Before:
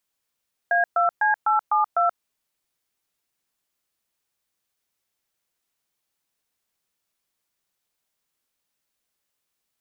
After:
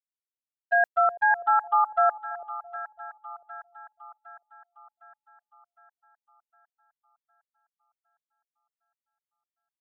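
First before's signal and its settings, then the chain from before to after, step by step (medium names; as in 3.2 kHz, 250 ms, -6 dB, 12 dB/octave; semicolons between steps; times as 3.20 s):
DTMF "A2C872", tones 130 ms, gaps 121 ms, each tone -19.5 dBFS
gate -22 dBFS, range -28 dB; two-band feedback delay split 780 Hz, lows 333 ms, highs 759 ms, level -14 dB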